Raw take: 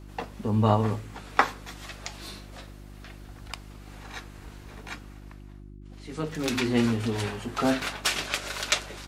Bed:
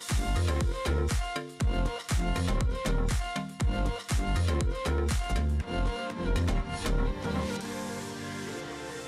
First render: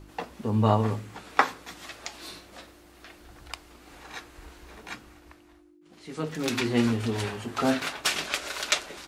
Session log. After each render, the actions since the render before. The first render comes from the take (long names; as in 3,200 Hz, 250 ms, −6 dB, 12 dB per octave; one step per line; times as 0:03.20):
hum removal 50 Hz, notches 5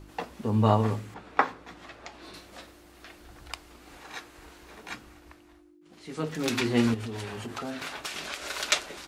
0:01.14–0:02.34: low-pass filter 1,500 Hz 6 dB per octave
0:03.97–0:04.90: low-shelf EQ 84 Hz −10 dB
0:06.94–0:08.50: downward compressor, threshold −32 dBFS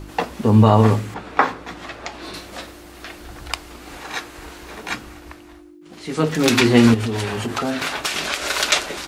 boost into a limiter +12.5 dB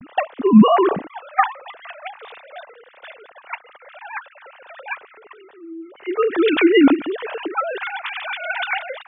three sine waves on the formant tracks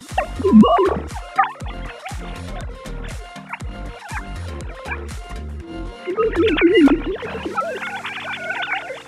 mix in bed −2.5 dB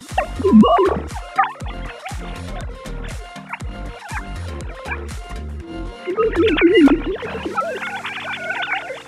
level +1 dB
brickwall limiter −2 dBFS, peak gain reduction 2 dB